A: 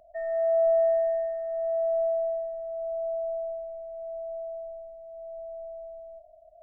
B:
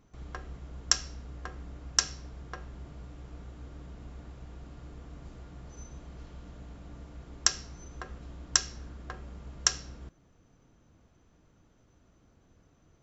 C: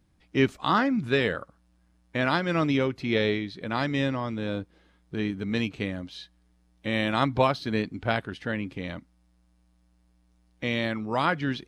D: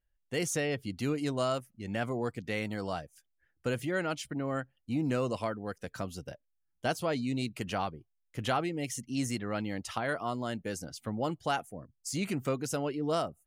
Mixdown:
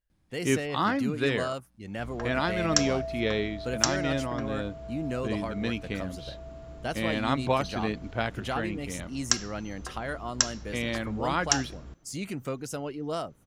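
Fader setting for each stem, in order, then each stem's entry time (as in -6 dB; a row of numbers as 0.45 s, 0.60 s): -11.0 dB, +0.5 dB, -3.5 dB, -2.0 dB; 2.05 s, 1.85 s, 0.10 s, 0.00 s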